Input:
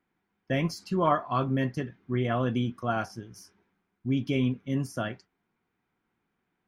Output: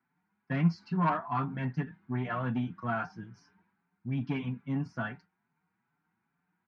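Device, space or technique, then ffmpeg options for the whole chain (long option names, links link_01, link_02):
barber-pole flanger into a guitar amplifier: -filter_complex "[0:a]asplit=2[link_01][link_02];[link_02]adelay=5.6,afreqshift=2.4[link_03];[link_01][link_03]amix=inputs=2:normalize=1,asoftclip=type=tanh:threshold=-23.5dB,highpass=90,equalizer=frequency=170:width_type=q:width=4:gain=9,equalizer=frequency=370:width_type=q:width=4:gain=-6,equalizer=frequency=540:width_type=q:width=4:gain=-10,equalizer=frequency=900:width_type=q:width=4:gain=7,equalizer=frequency=1500:width_type=q:width=4:gain=6,equalizer=frequency=3300:width_type=q:width=4:gain=-8,lowpass=frequency=4100:width=0.5412,lowpass=frequency=4100:width=1.3066"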